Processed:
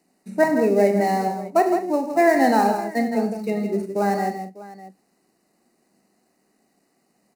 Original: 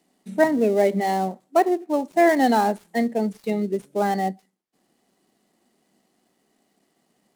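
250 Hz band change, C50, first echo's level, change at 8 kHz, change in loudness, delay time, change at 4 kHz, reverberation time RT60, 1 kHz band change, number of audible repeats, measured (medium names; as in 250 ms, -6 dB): +1.0 dB, no reverb, -10.0 dB, +1.5 dB, +1.0 dB, 40 ms, -1.5 dB, no reverb, +1.5 dB, 5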